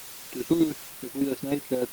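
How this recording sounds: chopped level 9.9 Hz, depth 60%, duty 30%; a quantiser's noise floor 8-bit, dither triangular; Opus

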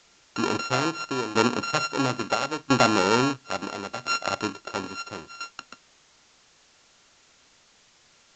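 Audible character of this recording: a buzz of ramps at a fixed pitch in blocks of 32 samples; tremolo saw down 0.74 Hz, depth 85%; a quantiser's noise floor 10-bit, dither triangular; A-law

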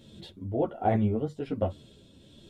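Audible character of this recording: tremolo triangle 1.3 Hz, depth 45%; a shimmering, thickened sound

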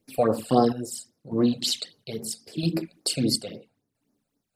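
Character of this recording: phasing stages 12, 3.7 Hz, lowest notch 310–3300 Hz; chopped level 0.76 Hz, depth 60%, duty 55%

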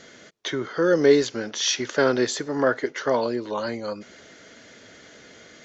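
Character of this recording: noise floor -49 dBFS; spectral tilt -3.5 dB/oct

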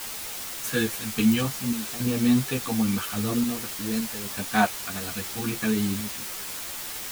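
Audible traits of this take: random-step tremolo, depth 80%; a quantiser's noise floor 6-bit, dither triangular; a shimmering, thickened sound

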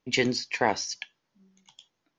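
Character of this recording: noise floor -80 dBFS; spectral tilt -3.0 dB/oct

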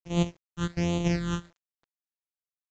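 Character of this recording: a buzz of ramps at a fixed pitch in blocks of 256 samples; phasing stages 8, 1.3 Hz, lowest notch 650–1600 Hz; a quantiser's noise floor 10-bit, dither none; µ-law

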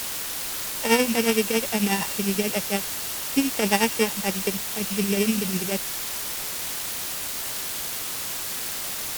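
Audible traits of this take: a buzz of ramps at a fixed pitch in blocks of 16 samples; tremolo triangle 11 Hz, depth 75%; a quantiser's noise floor 6-bit, dither triangular; SBC

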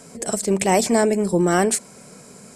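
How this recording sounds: noise floor -45 dBFS; spectral tilt -4.5 dB/oct

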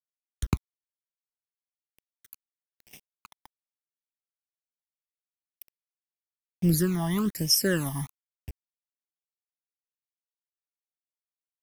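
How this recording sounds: a quantiser's noise floor 8-bit, dither none; phasing stages 12, 1.1 Hz, lowest notch 430–1400 Hz

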